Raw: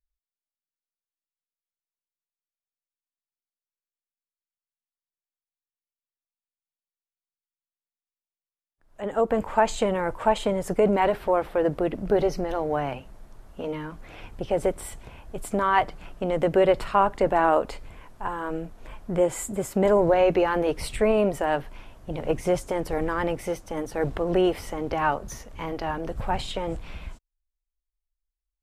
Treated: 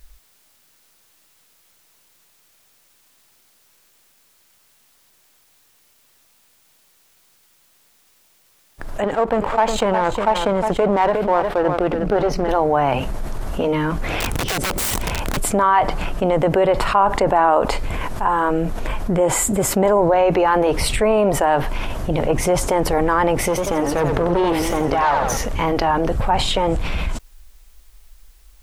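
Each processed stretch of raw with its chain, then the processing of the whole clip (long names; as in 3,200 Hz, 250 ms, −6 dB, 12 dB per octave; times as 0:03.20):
0:09.04–0:12.49: high-shelf EQ 8,700 Hz −10.5 dB + power curve on the samples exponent 1.4 + single-tap delay 360 ms −13 dB
0:14.20–0:15.37: dynamic equaliser 260 Hz, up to +6 dB, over −37 dBFS, Q 0.81 + downward compressor 10 to 1, threshold −34 dBFS + wrap-around overflow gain 35.5 dB
0:23.48–0:25.37: tube saturation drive 21 dB, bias 0.6 + feedback echo with a swinging delay time 89 ms, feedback 48%, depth 171 cents, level −7 dB
whole clip: dynamic equaliser 920 Hz, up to +7 dB, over −36 dBFS, Q 1.4; envelope flattener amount 70%; level −1.5 dB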